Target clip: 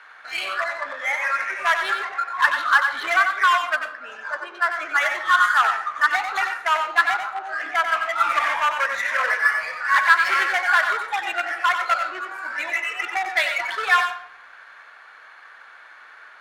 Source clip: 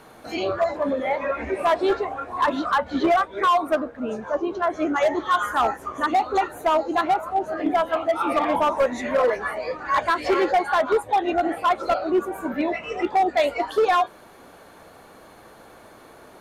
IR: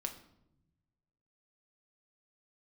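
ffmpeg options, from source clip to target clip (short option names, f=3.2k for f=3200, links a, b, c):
-filter_complex "[0:a]highpass=f=1.6k:t=q:w=2.7,adynamicsmooth=sensitivity=7.5:basefreq=3.2k,asplit=2[a][b];[1:a]atrim=start_sample=2205,adelay=92[c];[b][c]afir=irnorm=-1:irlink=0,volume=-5dB[d];[a][d]amix=inputs=2:normalize=0,volume=3dB"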